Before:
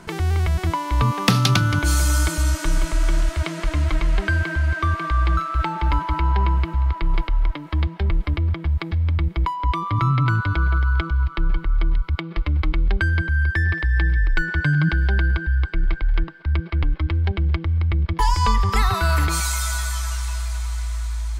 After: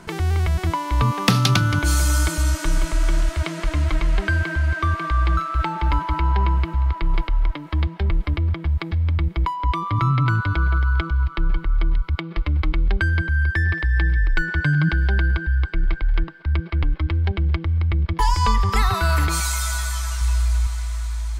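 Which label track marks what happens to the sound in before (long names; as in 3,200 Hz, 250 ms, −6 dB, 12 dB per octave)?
20.210000	20.670000	low-shelf EQ 130 Hz +8 dB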